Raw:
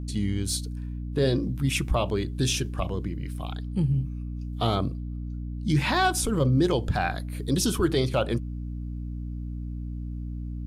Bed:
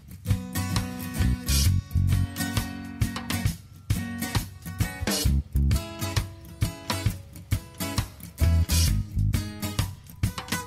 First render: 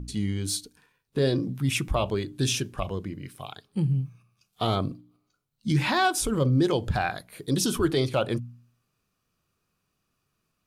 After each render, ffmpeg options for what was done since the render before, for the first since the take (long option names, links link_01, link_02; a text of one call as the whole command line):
ffmpeg -i in.wav -af "bandreject=frequency=60:width_type=h:width=4,bandreject=frequency=120:width_type=h:width=4,bandreject=frequency=180:width_type=h:width=4,bandreject=frequency=240:width_type=h:width=4,bandreject=frequency=300:width_type=h:width=4" out.wav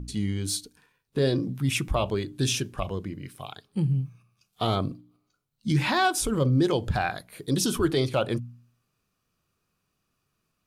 ffmpeg -i in.wav -af anull out.wav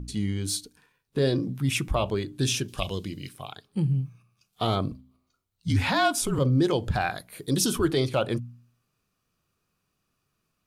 ffmpeg -i in.wav -filter_complex "[0:a]asettb=1/sr,asplit=3[link_01][link_02][link_03];[link_01]atrim=end=2.684[link_04];[link_02]atrim=start=2.68:end=3.29,asetpts=PTS-STARTPTS,afade=type=in:duration=0.004:curve=qsin,afade=type=out:start_time=0.606:duration=0.004:curve=qsin,highshelf=frequency=2400:width_type=q:width=1.5:gain=11[link_05];[link_03]atrim=start=3.286[link_06];[link_04][link_05]acrossfade=duration=0.004:curve1=hsin:curve2=qsin[link_07];[link_07][link_06]acrossfade=duration=0.004:curve1=qsin:curve2=hsin,asettb=1/sr,asplit=3[link_08][link_09][link_10];[link_08]atrim=end=4.914[link_11];[link_09]atrim=start=4.91:end=6.39,asetpts=PTS-STARTPTS,afade=type=in:duration=0.004:curve=qsin,afade=type=out:start_time=1.476:duration=0.004:curve=qsin,afreqshift=-44[link_12];[link_10]atrim=start=6.386[link_13];[link_11][link_12]acrossfade=duration=0.004:curve1=hsin:curve2=qsin[link_14];[link_14][link_13]acrossfade=duration=0.004:curve1=qsin:curve2=hsin,asettb=1/sr,asplit=3[link_15][link_16][link_17];[link_15]atrim=end=7.004[link_18];[link_16]atrim=start=7:end=7.73,asetpts=PTS-STARTPTS,afade=type=in:duration=0.004:curve=qsin,afade=type=out:start_time=0.726:duration=0.004:curve=qsin,highshelf=frequency=7200:gain=5[link_19];[link_17]atrim=start=7.726[link_20];[link_18][link_19]acrossfade=duration=0.004:curve1=hsin:curve2=qsin[link_21];[link_21][link_20]acrossfade=duration=0.004:curve1=qsin:curve2=hsin" out.wav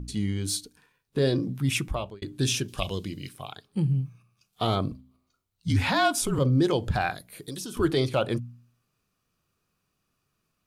ffmpeg -i in.wav -filter_complex "[0:a]asettb=1/sr,asplit=3[link_01][link_02][link_03];[link_01]atrim=end=7.134[link_04];[link_02]atrim=start=7.13:end=7.77,asetpts=PTS-STARTPTS,afade=type=in:duration=0.004:curve=qsin,afade=type=out:start_time=0.636:duration=0.004:curve=qsin,acrossover=split=560|1800|6500[link_05][link_06][link_07][link_08];[link_05]acompressor=threshold=-41dB:ratio=3[link_09];[link_06]acompressor=threshold=-54dB:ratio=3[link_10];[link_07]acompressor=threshold=-46dB:ratio=3[link_11];[link_08]acompressor=threshold=-45dB:ratio=3[link_12];[link_09][link_10][link_11][link_12]amix=inputs=4:normalize=0[link_13];[link_03]atrim=start=7.766[link_14];[link_04][link_13]acrossfade=duration=0.004:curve1=hsin:curve2=qsin[link_15];[link_15][link_14]acrossfade=duration=0.004:curve1=qsin:curve2=hsin,asplit=2[link_16][link_17];[link_16]atrim=end=2.22,asetpts=PTS-STARTPTS,afade=type=out:start_time=1.77:duration=0.45[link_18];[link_17]atrim=start=2.22,asetpts=PTS-STARTPTS,afade=type=in:duration=0.004:curve=hsin[link_19];[link_18][link_19]concat=n=2:v=0:a=1" out.wav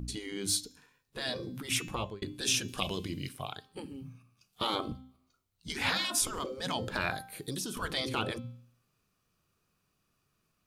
ffmpeg -i in.wav -af "bandreject=frequency=261.2:width_type=h:width=4,bandreject=frequency=522.4:width_type=h:width=4,bandreject=frequency=783.6:width_type=h:width=4,bandreject=frequency=1044.8:width_type=h:width=4,bandreject=frequency=1306:width_type=h:width=4,bandreject=frequency=1567.2:width_type=h:width=4,bandreject=frequency=1828.4:width_type=h:width=4,bandreject=frequency=2089.6:width_type=h:width=4,bandreject=frequency=2350.8:width_type=h:width=4,bandreject=frequency=2612:width_type=h:width=4,bandreject=frequency=2873.2:width_type=h:width=4,bandreject=frequency=3134.4:width_type=h:width=4,bandreject=frequency=3395.6:width_type=h:width=4,bandreject=frequency=3656.8:width_type=h:width=4,bandreject=frequency=3918:width_type=h:width=4,bandreject=frequency=4179.2:width_type=h:width=4,bandreject=frequency=4440.4:width_type=h:width=4,bandreject=frequency=4701.6:width_type=h:width=4,bandreject=frequency=4962.8:width_type=h:width=4,bandreject=frequency=5224:width_type=h:width=4,bandreject=frequency=5485.2:width_type=h:width=4,bandreject=frequency=5746.4:width_type=h:width=4,bandreject=frequency=6007.6:width_type=h:width=4,bandreject=frequency=6268.8:width_type=h:width=4,bandreject=frequency=6530:width_type=h:width=4,bandreject=frequency=6791.2:width_type=h:width=4,bandreject=frequency=7052.4:width_type=h:width=4,bandreject=frequency=7313.6:width_type=h:width=4,afftfilt=real='re*lt(hypot(re,im),0.178)':imag='im*lt(hypot(re,im),0.178)':win_size=1024:overlap=0.75" out.wav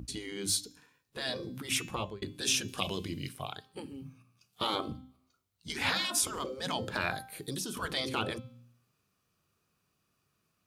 ffmpeg -i in.wav -af "highpass=54,bandreject=frequency=60:width_type=h:width=6,bandreject=frequency=120:width_type=h:width=6,bandreject=frequency=180:width_type=h:width=6,bandreject=frequency=240:width_type=h:width=6,bandreject=frequency=300:width_type=h:width=6" out.wav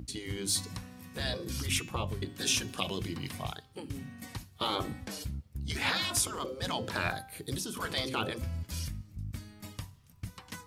ffmpeg -i in.wav -i bed.wav -filter_complex "[1:a]volume=-15dB[link_01];[0:a][link_01]amix=inputs=2:normalize=0" out.wav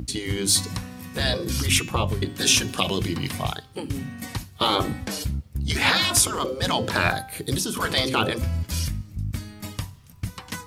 ffmpeg -i in.wav -af "volume=10.5dB,alimiter=limit=-3dB:level=0:latency=1" out.wav